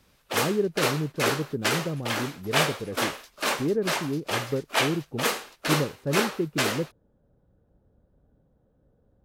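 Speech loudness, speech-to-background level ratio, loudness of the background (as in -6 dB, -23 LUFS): -31.0 LUFS, -2.5 dB, -28.5 LUFS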